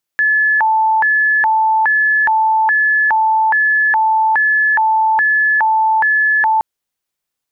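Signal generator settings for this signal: siren hi-lo 879–1720 Hz 1.2/s sine -10 dBFS 6.42 s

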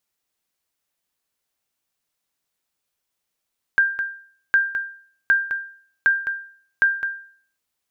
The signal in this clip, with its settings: sonar ping 1590 Hz, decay 0.51 s, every 0.76 s, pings 5, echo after 0.21 s, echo -9.5 dB -9.5 dBFS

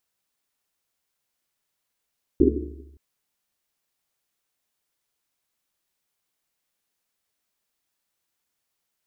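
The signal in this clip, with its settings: Risset drum length 0.57 s, pitch 71 Hz, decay 1.36 s, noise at 330 Hz, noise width 160 Hz, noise 70%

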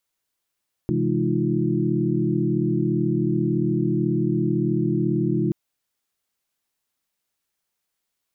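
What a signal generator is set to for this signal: chord C3/E3/G#3/D#4/F4 sine, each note -25.5 dBFS 4.63 s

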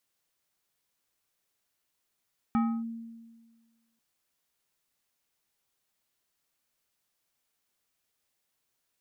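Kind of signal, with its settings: FM tone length 1.44 s, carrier 229 Hz, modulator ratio 4.54, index 0.62, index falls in 0.29 s linear, decay 1.51 s, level -21 dB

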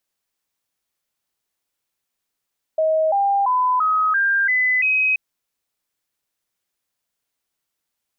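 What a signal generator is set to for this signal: stepped sine 633 Hz up, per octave 3, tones 7, 0.34 s, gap 0.00 s -15 dBFS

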